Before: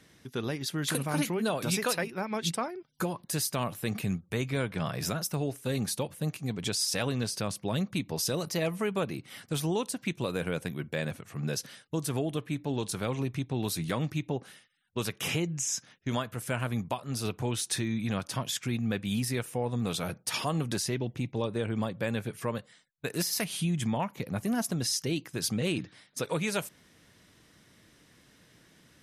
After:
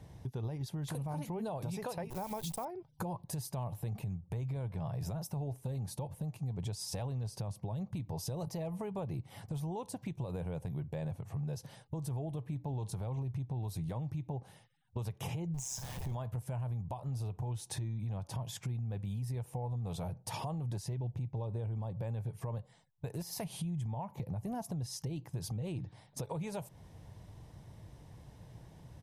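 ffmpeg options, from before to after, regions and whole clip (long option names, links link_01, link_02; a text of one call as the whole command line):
ffmpeg -i in.wav -filter_complex "[0:a]asettb=1/sr,asplit=3[link_01][link_02][link_03];[link_01]atrim=end=2.104[link_04];[link_02]atrim=start=2.1:end=2.65,asetpts=PTS-STARTPTS,afade=type=in:duration=0.004:curve=qsin,afade=type=out:start_time=0.546:duration=0.004:curve=qsin,acrusher=bits=8:dc=4:mix=0:aa=0.000001,aemphasis=mode=production:type=75kf[link_05];[link_03]atrim=start=2.646[link_06];[link_04][link_05]acrossfade=duration=0.004:curve1=hsin:curve2=qsin[link_07];[link_07][link_06]acrossfade=duration=0.004:curve1=qsin:curve2=hsin,asettb=1/sr,asplit=3[link_08][link_09][link_10];[link_08]atrim=end=15.544[link_11];[link_09]atrim=start=15.54:end=16.15,asetpts=PTS-STARTPTS,afade=type=in:duration=0.004:curve=qsin,afade=type=out:start_time=0.606:duration=0.004:curve=qsin,aeval=exprs='val(0)+0.5*0.0178*sgn(val(0))':channel_layout=same,highshelf=frequency=3800:gain=7,tremolo=f=130:d=0.571[link_12];[link_10]atrim=start=16.146[link_13];[link_11][link_12]acrossfade=duration=0.004:curve1=hsin:curve2=qsin[link_14];[link_14][link_13]acrossfade=duration=0.004:curve1=qsin:curve2=hsin,firequalizer=gain_entry='entry(110,0);entry(230,-17);entry(870,-6);entry(1300,-24);entry(12000,-21)':delay=0.05:min_phase=1,alimiter=level_in=14dB:limit=-24dB:level=0:latency=1:release=89,volume=-14dB,acompressor=threshold=-56dB:ratio=2.5,volume=16dB" out.wav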